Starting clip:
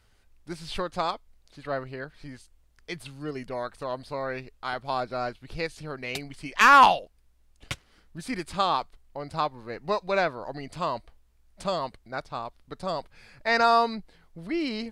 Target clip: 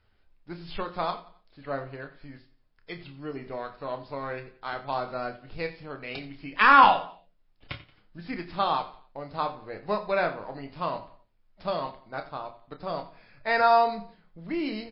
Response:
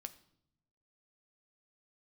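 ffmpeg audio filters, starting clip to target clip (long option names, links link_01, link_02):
-filter_complex "[0:a]aemphasis=mode=reproduction:type=50kf,bandreject=frequency=60:width_type=h:width=6,bandreject=frequency=120:width_type=h:width=6,bandreject=frequency=180:width_type=h:width=6,asplit=2[link_01][link_02];[link_02]aeval=exprs='sgn(val(0))*max(abs(val(0))-0.02,0)':channel_layout=same,volume=-8.5dB[link_03];[link_01][link_03]amix=inputs=2:normalize=0,asplit=2[link_04][link_05];[link_05]adelay=29,volume=-9dB[link_06];[link_04][link_06]amix=inputs=2:normalize=0,aecho=1:1:89|178|267:0.141|0.0537|0.0204[link_07];[1:a]atrim=start_sample=2205,atrim=end_sample=4410[link_08];[link_07][link_08]afir=irnorm=-1:irlink=0,volume=1.5dB" -ar 12000 -c:a libmp3lame -b:a 24k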